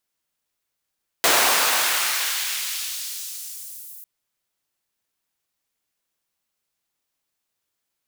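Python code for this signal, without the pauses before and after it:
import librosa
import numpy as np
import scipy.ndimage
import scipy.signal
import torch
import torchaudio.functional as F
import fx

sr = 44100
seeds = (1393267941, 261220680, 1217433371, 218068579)

y = fx.riser_noise(sr, seeds[0], length_s=2.8, colour='pink', kind='highpass', start_hz=530.0, end_hz=13000.0, q=0.83, swell_db=-17.5, law='exponential')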